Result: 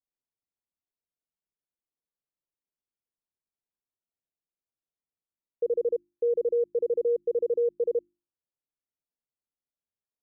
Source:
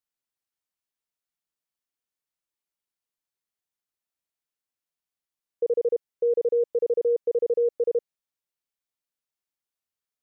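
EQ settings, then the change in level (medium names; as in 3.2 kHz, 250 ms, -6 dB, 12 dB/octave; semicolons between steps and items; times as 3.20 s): Bessel low-pass 540 Hz, order 2; hum notches 50/100/150/200/250/300/350 Hz; 0.0 dB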